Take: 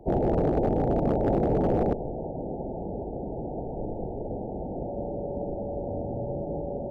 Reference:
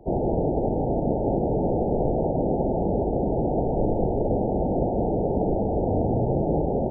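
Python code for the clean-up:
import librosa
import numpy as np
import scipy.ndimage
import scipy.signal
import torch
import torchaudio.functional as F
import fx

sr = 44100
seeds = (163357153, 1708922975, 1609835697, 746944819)

y = fx.fix_declip(x, sr, threshold_db=-17.5)
y = fx.notch(y, sr, hz=570.0, q=30.0)
y = fx.gain(y, sr, db=fx.steps((0.0, 0.0), (1.93, 10.0)))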